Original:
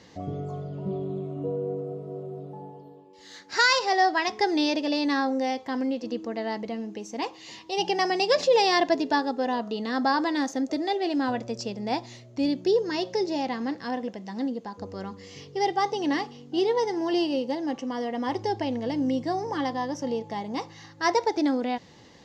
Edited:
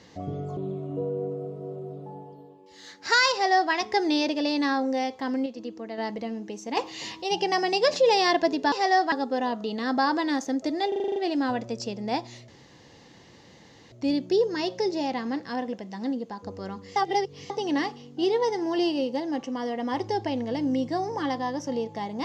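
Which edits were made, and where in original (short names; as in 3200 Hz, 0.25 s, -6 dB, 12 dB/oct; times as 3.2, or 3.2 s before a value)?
0.57–1.04 cut
3.79–4.19 copy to 9.19
5.93–6.45 gain -5 dB
7.24–7.69 gain +7 dB
10.95 stutter 0.04 s, 8 plays
12.27 insert room tone 1.44 s
15.31–15.85 reverse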